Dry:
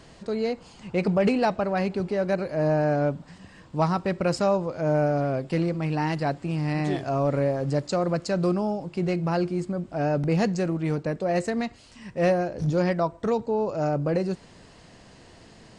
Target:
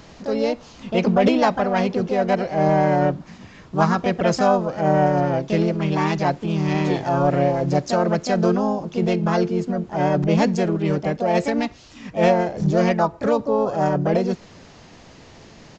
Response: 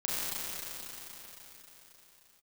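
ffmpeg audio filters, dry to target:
-filter_complex "[0:a]asplit=2[link_01][link_02];[link_02]asetrate=55563,aresample=44100,atempo=0.793701,volume=-3dB[link_03];[link_01][link_03]amix=inputs=2:normalize=0,aresample=16000,aresample=44100,volume=3.5dB"

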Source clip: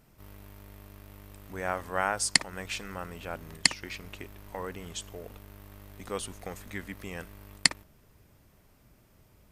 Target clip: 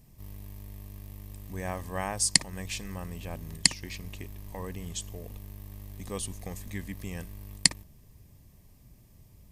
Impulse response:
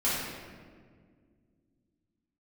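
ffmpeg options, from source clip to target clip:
-af "asuperstop=centerf=1400:order=4:qfactor=4.4,bass=frequency=250:gain=11,treble=frequency=4000:gain=8,volume=-4dB"

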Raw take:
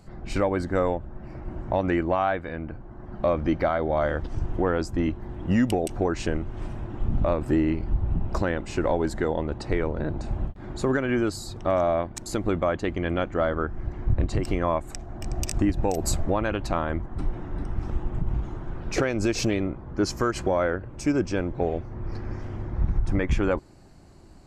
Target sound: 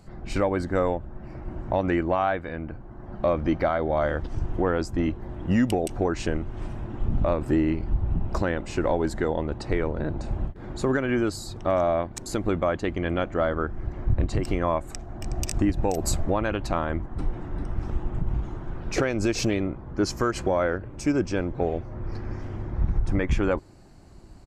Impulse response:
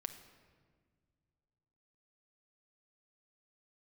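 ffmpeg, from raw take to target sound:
-filter_complex "[0:a]asplit=2[link_01][link_02];[link_02]adelay=1341,volume=-27dB,highshelf=frequency=4000:gain=-30.2[link_03];[link_01][link_03]amix=inputs=2:normalize=0"

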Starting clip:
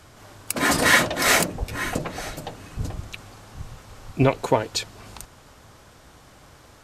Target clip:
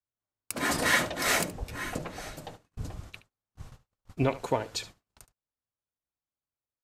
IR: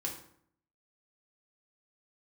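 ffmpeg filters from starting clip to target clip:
-filter_complex "[0:a]agate=range=-43dB:threshold=-37dB:ratio=16:detection=peak,asplit=2[link_01][link_02];[link_02]aecho=0:1:72:0.15[link_03];[link_01][link_03]amix=inputs=2:normalize=0,volume=-8dB"

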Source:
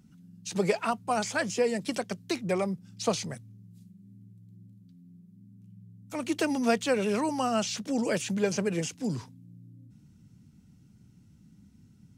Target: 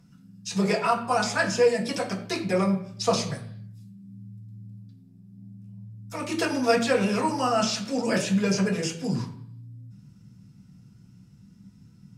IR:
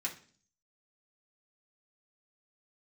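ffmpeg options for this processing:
-filter_complex "[0:a]asettb=1/sr,asplit=3[link_01][link_02][link_03];[link_01]atrim=end=4.634[link_04];[link_02]atrim=start=4.63:end=5.93,asetpts=PTS-STARTPTS,afade=type=in:duration=0.004:curve=qsin,afade=type=out:start_time=1.296:duration=0.004:curve=qsin,aeval=exprs='0.00841*(cos(1*acos(clip(val(0)/0.00841,-1,1)))-cos(1*PI/2))+0.000168*(cos(6*acos(clip(val(0)/0.00841,-1,1)))-cos(6*PI/2))':channel_layout=same[link_05];[link_03]atrim=start=5.926[link_06];[link_04][link_05]acrossfade=duration=0.004:curve1=hsin:curve2=qsin[link_07];[link_07][link_06]acrossfade=duration=0.004:curve1=qsin:curve2=hsin[link_08];[1:a]atrim=start_sample=2205,afade=type=out:start_time=0.34:duration=0.01,atrim=end_sample=15435,asetrate=29106,aresample=44100[link_09];[link_08][link_09]afir=irnorm=-1:irlink=0"

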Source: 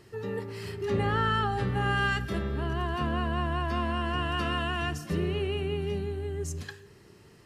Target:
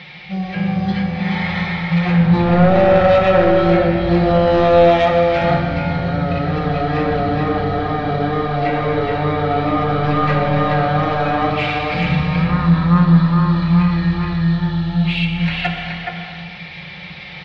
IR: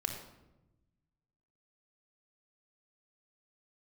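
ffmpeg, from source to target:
-filter_complex "[0:a]acrossover=split=4100[link_01][link_02];[link_02]acompressor=threshold=-56dB:ratio=4:attack=1:release=60[link_03];[link_01][link_03]amix=inputs=2:normalize=0,highpass=410,equalizer=frequency=580:width_type=q:width=4:gain=-8,equalizer=frequency=900:width_type=q:width=4:gain=-8,equalizer=frequency=1600:width_type=q:width=4:gain=-4,equalizer=frequency=2700:width_type=q:width=4:gain=-9,equalizer=frequency=5400:width_type=q:width=4:gain=7,lowpass=frequency=9000:width=0.5412,lowpass=frequency=9000:width=1.3066,aecho=1:1:181:0.631,asplit=2[link_04][link_05];[link_05]aeval=exprs='0.1*sin(PI/2*2.51*val(0)/0.1)':channel_layout=same,volume=-8dB[link_06];[link_04][link_06]amix=inputs=2:normalize=0,aemphasis=mode=production:type=75fm,areverse,acompressor=mode=upward:threshold=-40dB:ratio=2.5,areverse[link_07];[1:a]atrim=start_sample=2205[link_08];[link_07][link_08]afir=irnorm=-1:irlink=0,asetrate=18846,aresample=44100,asplit=2[link_09][link_10];[link_10]adelay=35,volume=-13dB[link_11];[link_09][link_11]amix=inputs=2:normalize=0,volume=9dB"

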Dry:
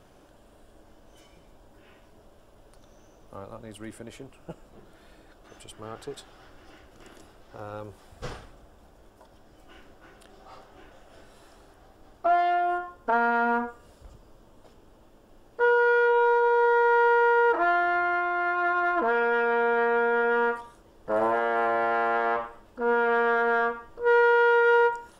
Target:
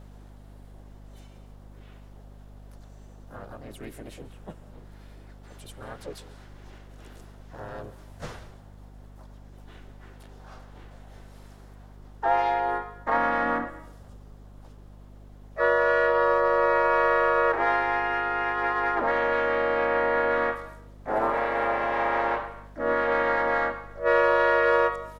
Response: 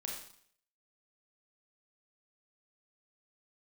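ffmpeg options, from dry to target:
-filter_complex "[0:a]asplit=4[link_01][link_02][link_03][link_04];[link_02]asetrate=33038,aresample=44100,atempo=1.33484,volume=-11dB[link_05];[link_03]asetrate=52444,aresample=44100,atempo=0.840896,volume=-2dB[link_06];[link_04]asetrate=58866,aresample=44100,atempo=0.749154,volume=-5dB[link_07];[link_01][link_05][link_06][link_07]amix=inputs=4:normalize=0,asplit=2[link_08][link_09];[1:a]atrim=start_sample=2205,adelay=138[link_10];[link_09][link_10]afir=irnorm=-1:irlink=0,volume=-15.5dB[link_11];[link_08][link_11]amix=inputs=2:normalize=0,aeval=exprs='val(0)+0.00794*(sin(2*PI*50*n/s)+sin(2*PI*2*50*n/s)/2+sin(2*PI*3*50*n/s)/3+sin(2*PI*4*50*n/s)/4+sin(2*PI*5*50*n/s)/5)':channel_layout=same,volume=-4dB"

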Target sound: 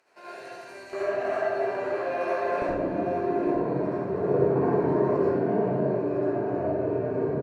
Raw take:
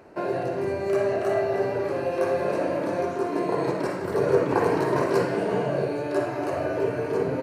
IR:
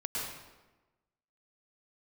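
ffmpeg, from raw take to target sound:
-filter_complex "[0:a]asetnsamples=nb_out_samples=441:pad=0,asendcmd='0.93 bandpass f 1400;2.62 bandpass f 230',bandpass=frequency=6000:width_type=q:width=0.51:csg=0,aecho=1:1:851|1702|2553|3404:0.335|0.127|0.0484|0.0184[link_01];[1:a]atrim=start_sample=2205,asetrate=66150,aresample=44100[link_02];[link_01][link_02]afir=irnorm=-1:irlink=0"

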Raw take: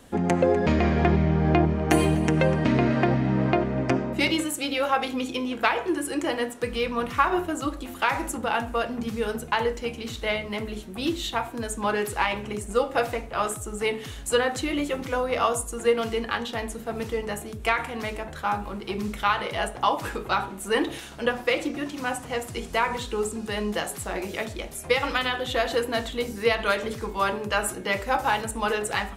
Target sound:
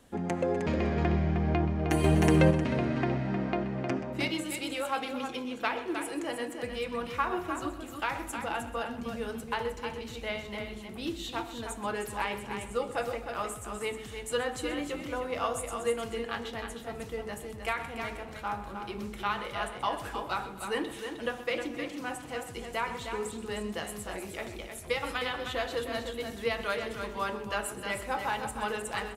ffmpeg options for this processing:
ffmpeg -i in.wav -filter_complex "[0:a]asplit=2[link_01][link_02];[link_02]aecho=0:1:310:0.447[link_03];[link_01][link_03]amix=inputs=2:normalize=0,asettb=1/sr,asplit=3[link_04][link_05][link_06];[link_04]atrim=end=2.044[link_07];[link_05]atrim=start=2.04:end=2.51,asetpts=PTS-STARTPTS,afade=type=in:duration=0.004:curve=qsin,afade=type=out:start_time=0.466:duration=0.004:curve=qsin,acontrast=81[link_08];[link_06]atrim=start=2.506[link_09];[link_07][link_08]acrossfade=duration=0.004:curve1=hsin:curve2=qsin[link_10];[link_10][link_09]acrossfade=duration=0.004:curve1=qsin:curve2=hsin,asplit=2[link_11][link_12];[link_12]aecho=0:1:128|256|384|512:0.188|0.0848|0.0381|0.0172[link_13];[link_11][link_13]amix=inputs=2:normalize=0,volume=-8.5dB" out.wav

